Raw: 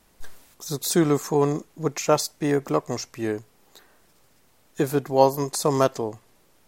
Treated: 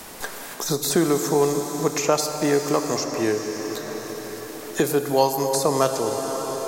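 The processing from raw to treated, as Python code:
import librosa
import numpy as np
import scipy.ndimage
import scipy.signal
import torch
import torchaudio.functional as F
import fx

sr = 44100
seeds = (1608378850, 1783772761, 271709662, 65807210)

y = fx.bass_treble(x, sr, bass_db=-6, treble_db=4)
y = fx.rev_plate(y, sr, seeds[0], rt60_s=3.2, hf_ratio=0.95, predelay_ms=0, drr_db=6.0)
y = fx.band_squash(y, sr, depth_pct=70)
y = y * 10.0 ** (1.5 / 20.0)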